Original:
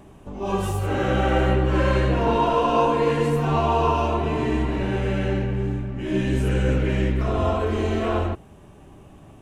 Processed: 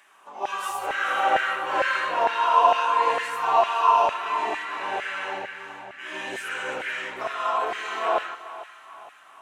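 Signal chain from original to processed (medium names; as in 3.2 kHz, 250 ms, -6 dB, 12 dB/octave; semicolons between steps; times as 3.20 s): two-band feedback delay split 740 Hz, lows 151 ms, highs 430 ms, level -14 dB; LFO high-pass saw down 2.2 Hz 710–1800 Hz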